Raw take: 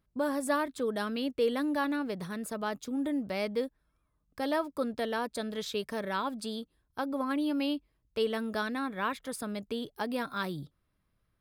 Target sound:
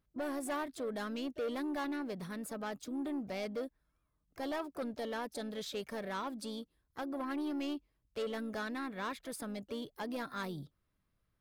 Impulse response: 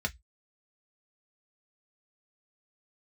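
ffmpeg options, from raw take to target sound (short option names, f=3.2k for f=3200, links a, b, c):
-filter_complex "[0:a]asoftclip=type=tanh:threshold=-28.5dB,asplit=2[a][b];[b]asetrate=55563,aresample=44100,atempo=0.793701,volume=-14dB[c];[a][c]amix=inputs=2:normalize=0,volume=-4dB"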